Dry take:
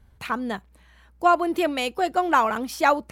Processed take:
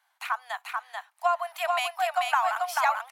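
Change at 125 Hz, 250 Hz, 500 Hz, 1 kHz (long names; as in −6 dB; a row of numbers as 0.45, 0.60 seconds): can't be measured, below −40 dB, −8.0 dB, −3.5 dB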